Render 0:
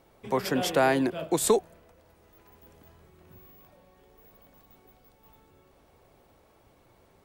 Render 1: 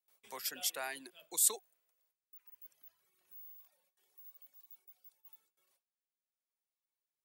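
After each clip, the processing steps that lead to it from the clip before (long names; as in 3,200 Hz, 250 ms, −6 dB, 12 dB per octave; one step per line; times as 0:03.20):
noise gate with hold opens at −49 dBFS
reverb reduction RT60 1.9 s
first difference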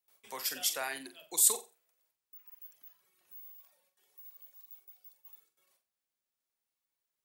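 flutter between parallel walls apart 7.7 metres, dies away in 0.28 s
level +4 dB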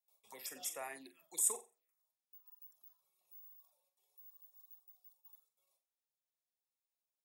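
harmonic generator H 8 −41 dB, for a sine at −11.5 dBFS
phaser swept by the level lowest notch 270 Hz, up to 4,300 Hz, full sweep at −32.5 dBFS
notch comb filter 1,500 Hz
level −6 dB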